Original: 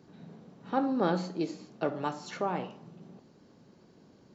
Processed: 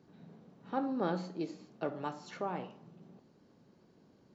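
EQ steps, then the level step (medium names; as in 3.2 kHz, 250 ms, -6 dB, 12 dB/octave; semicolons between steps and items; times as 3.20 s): treble shelf 5.4 kHz -5 dB; -5.5 dB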